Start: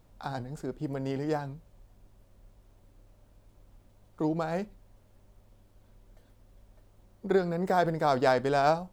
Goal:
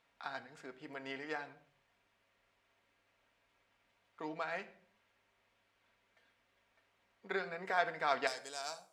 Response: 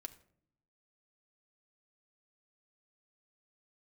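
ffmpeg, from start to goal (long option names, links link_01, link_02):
-filter_complex "[0:a]asetnsamples=nb_out_samples=441:pad=0,asendcmd='8.27 bandpass f 7900',bandpass=frequency=2200:width_type=q:width=1.7:csg=0[link_01];[1:a]atrim=start_sample=2205,afade=type=out:start_time=0.41:duration=0.01,atrim=end_sample=18522[link_02];[link_01][link_02]afir=irnorm=-1:irlink=0,volume=9dB"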